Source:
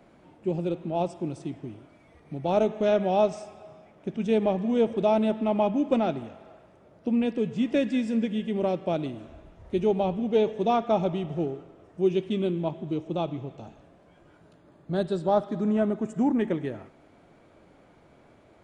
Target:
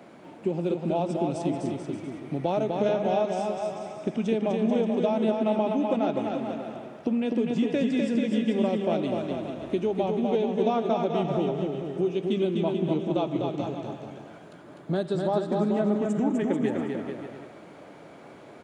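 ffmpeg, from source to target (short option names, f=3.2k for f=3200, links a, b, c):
-filter_complex "[0:a]highpass=160,acompressor=threshold=-32dB:ratio=6,asplit=2[a][b];[b]aecho=0:1:250|437.5|578.1|683.6|762.7:0.631|0.398|0.251|0.158|0.1[c];[a][c]amix=inputs=2:normalize=0,volume=8dB"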